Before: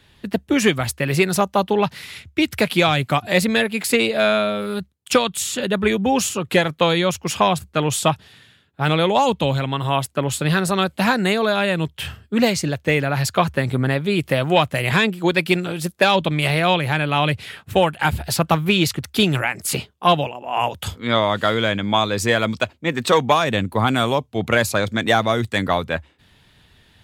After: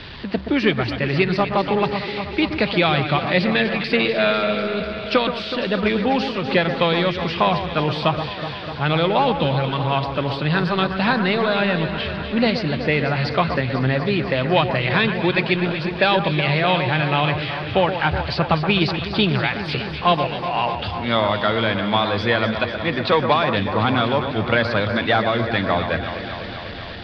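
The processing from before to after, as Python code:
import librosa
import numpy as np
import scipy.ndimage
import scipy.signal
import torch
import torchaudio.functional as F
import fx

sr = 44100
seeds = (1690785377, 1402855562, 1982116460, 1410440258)

y = x + 0.5 * 10.0 ** (-28.5 / 20.0) * np.sign(x)
y = scipy.signal.sosfilt(scipy.signal.ellip(4, 1.0, 40, 4700.0, 'lowpass', fs=sr, output='sos'), y)
y = fx.echo_alternate(y, sr, ms=124, hz=2000.0, feedback_pct=86, wet_db=-8.5)
y = y * 10.0 ** (-1.5 / 20.0)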